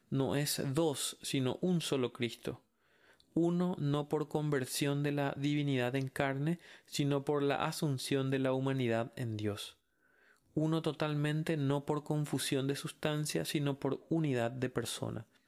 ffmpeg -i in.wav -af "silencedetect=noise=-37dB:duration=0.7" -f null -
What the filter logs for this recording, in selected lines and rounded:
silence_start: 2.52
silence_end: 3.37 | silence_duration: 0.84
silence_start: 9.67
silence_end: 10.57 | silence_duration: 0.90